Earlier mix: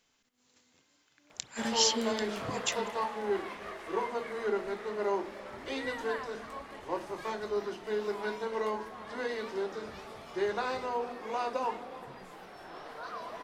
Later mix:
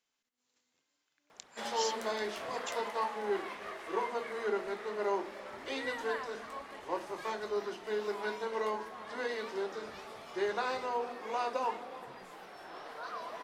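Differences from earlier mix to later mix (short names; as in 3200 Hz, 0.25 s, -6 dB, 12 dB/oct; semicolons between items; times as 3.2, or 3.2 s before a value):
speech -11.0 dB; master: add low shelf 200 Hz -10.5 dB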